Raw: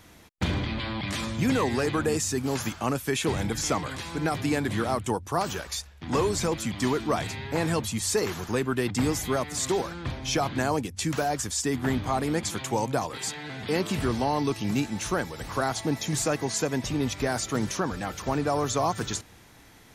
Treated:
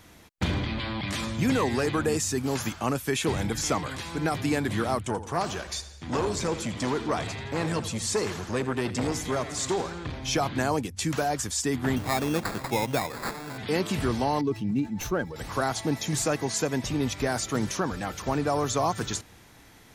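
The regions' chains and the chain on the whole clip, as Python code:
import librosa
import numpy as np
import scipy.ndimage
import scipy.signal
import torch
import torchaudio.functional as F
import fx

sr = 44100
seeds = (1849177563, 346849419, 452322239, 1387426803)

y = fx.chain(x, sr, fx.lowpass(hz=9000.0, slope=12),
    fx.echo_feedback(ms=84, feedback_pct=57, wet_db=-15.0),
    fx.transformer_sat(knee_hz=540.0), at=(5.03, 10.15))
y = fx.chain(y, sr, fx.highpass(hz=76.0, slope=12),
    fx.sample_hold(seeds[0], rate_hz=3000.0, jitter_pct=0), at=(11.96, 13.58))
y = fx.chain(y, sr, fx.spec_expand(power=1.6),
    fx.running_max(window=3), at=(14.41, 15.36))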